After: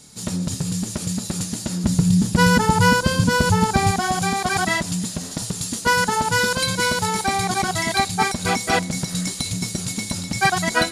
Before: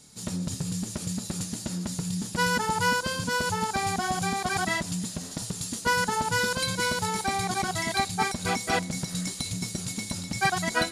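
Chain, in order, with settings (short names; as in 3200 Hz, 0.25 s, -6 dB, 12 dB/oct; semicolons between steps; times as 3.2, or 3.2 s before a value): 1.84–3.91 low shelf 290 Hz +11.5 dB; gain +6.5 dB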